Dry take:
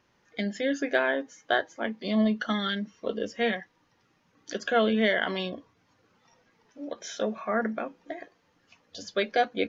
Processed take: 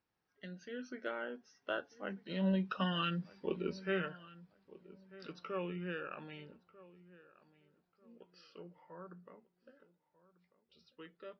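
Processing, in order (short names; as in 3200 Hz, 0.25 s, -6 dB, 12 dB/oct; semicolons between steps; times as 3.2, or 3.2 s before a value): Doppler pass-by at 2.71, 17 m/s, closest 9.9 m; darkening echo 1.056 s, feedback 28%, low-pass 2400 Hz, level -19 dB; varispeed -15%; gain -5.5 dB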